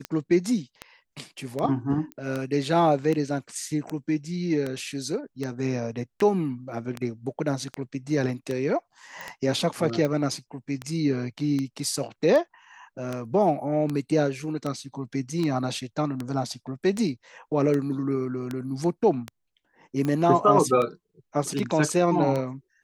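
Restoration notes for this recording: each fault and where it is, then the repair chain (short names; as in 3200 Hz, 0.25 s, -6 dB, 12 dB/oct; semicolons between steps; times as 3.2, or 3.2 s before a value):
tick 78 rpm -16 dBFS
2.12 pop -23 dBFS
9.21 pop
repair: de-click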